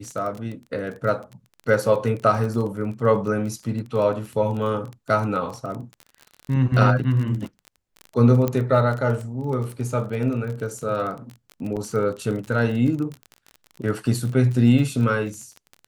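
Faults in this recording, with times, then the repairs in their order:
crackle 28/s -29 dBFS
8.48 pop -10 dBFS
11.76–11.77 gap 7 ms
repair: de-click; interpolate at 11.76, 7 ms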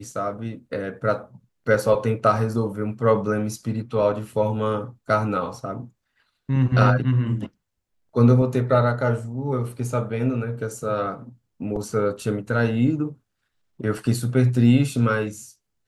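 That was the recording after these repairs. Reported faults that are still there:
none

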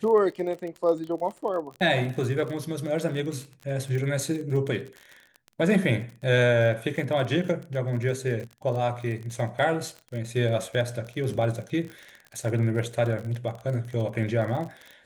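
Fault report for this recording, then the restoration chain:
crackle 41/s -33 dBFS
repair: de-click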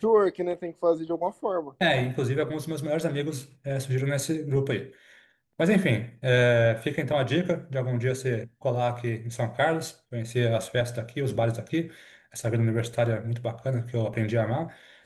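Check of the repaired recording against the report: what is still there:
none

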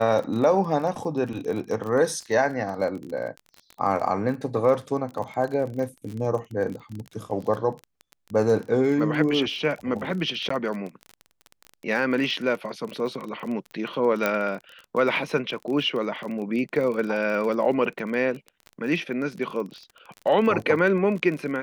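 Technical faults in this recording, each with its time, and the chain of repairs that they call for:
crackle 33/s -31 dBFS
10.49–10.5 gap 14 ms
14.26 pop -9 dBFS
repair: de-click; interpolate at 10.49, 14 ms

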